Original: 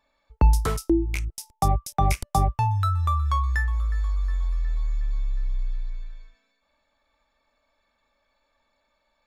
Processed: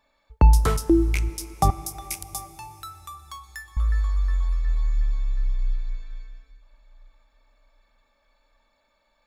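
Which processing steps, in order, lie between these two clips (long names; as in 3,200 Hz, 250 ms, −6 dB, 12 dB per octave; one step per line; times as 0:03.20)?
0:01.70–0:03.77: first-order pre-emphasis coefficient 0.97
dense smooth reverb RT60 4.3 s, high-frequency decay 0.9×, DRR 15 dB
level +2.5 dB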